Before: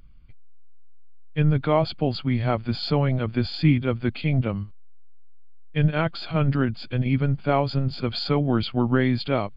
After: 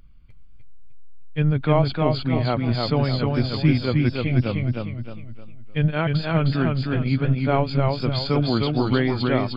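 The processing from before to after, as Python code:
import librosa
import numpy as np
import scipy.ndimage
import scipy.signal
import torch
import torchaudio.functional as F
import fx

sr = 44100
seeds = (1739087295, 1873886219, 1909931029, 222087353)

y = fx.echo_warbled(x, sr, ms=307, feedback_pct=38, rate_hz=2.8, cents=75, wet_db=-3)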